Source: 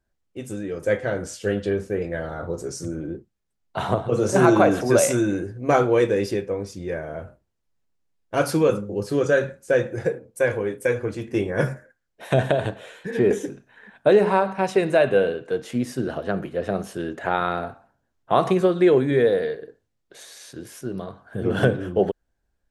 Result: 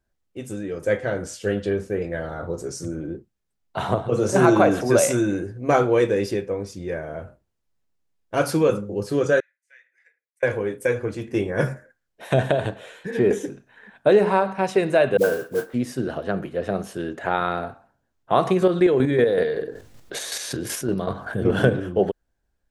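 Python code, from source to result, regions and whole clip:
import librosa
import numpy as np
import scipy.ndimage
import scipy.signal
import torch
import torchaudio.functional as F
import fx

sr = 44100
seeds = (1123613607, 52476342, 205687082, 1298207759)

y = fx.chain(x, sr, fx.bandpass_q(hz=2000.0, q=8.2),
    fx.differentiator(), at=(9.4, 10.43))
y = fx.chain(y, sr, fx.lowpass_res(hz=1400.0, q=1.7),
    fx.dispersion(late='highs', ms=71.0, hz=450.0),
    fx.mod_noise(seeds[0], snr_db=20), at=(15.17, 15.74))
y = fx.chain(y, sr, fx.chopper(hz=5.3, depth_pct=60, duty_pct=30),
    fx.env_flatten(amount_pct=50), at=(18.62, 21.8))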